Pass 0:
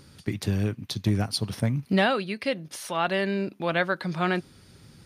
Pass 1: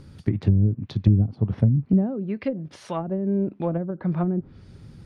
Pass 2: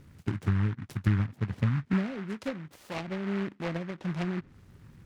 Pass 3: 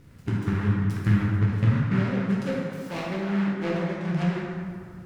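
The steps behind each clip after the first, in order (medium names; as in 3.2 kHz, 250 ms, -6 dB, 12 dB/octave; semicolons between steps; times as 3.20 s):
low-pass that closes with the level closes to 310 Hz, closed at -21 dBFS; tilt EQ -2.5 dB/octave
delay time shaken by noise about 1.4 kHz, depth 0.15 ms; trim -8 dB
plate-style reverb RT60 2.1 s, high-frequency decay 0.55×, DRR -4.5 dB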